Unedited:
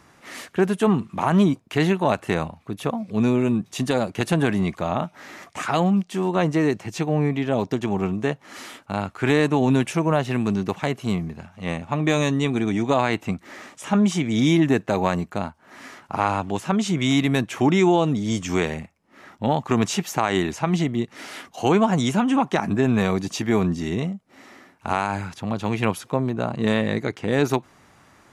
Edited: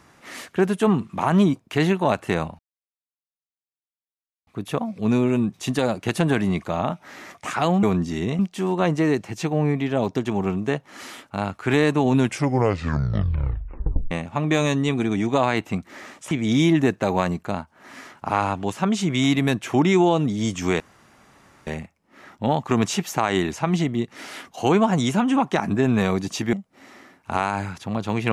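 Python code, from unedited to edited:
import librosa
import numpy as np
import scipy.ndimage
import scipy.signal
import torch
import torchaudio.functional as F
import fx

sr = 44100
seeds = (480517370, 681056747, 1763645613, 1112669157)

y = fx.edit(x, sr, fx.insert_silence(at_s=2.59, length_s=1.88),
    fx.tape_stop(start_s=9.74, length_s=1.93),
    fx.cut(start_s=13.87, length_s=0.31),
    fx.insert_room_tone(at_s=18.67, length_s=0.87),
    fx.move(start_s=23.53, length_s=0.56, to_s=5.95), tone=tone)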